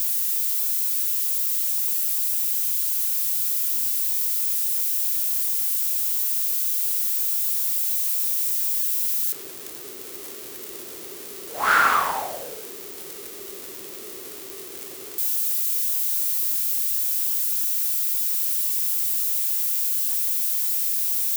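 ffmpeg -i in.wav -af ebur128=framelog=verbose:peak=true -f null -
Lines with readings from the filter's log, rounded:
Integrated loudness:
  I:         -20.1 LUFS
  Threshold: -31.1 LUFS
Loudness range:
  LRA:         4.9 LU
  Threshold: -41.3 LUFS
  LRA low:   -24.9 LUFS
  LRA high:  -20.0 LUFS
True peak:
  Peak:       -6.8 dBFS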